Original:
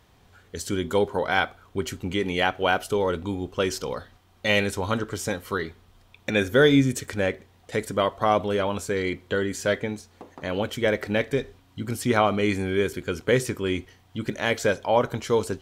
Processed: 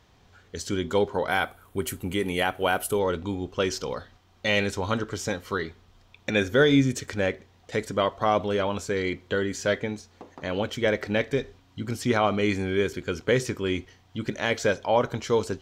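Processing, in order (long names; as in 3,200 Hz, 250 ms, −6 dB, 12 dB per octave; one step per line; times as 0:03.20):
high shelf with overshoot 7,800 Hz −6.5 dB, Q 1.5, from 0:01.28 +10 dB, from 0:02.99 −6 dB
boost into a limiter +8 dB
level −9 dB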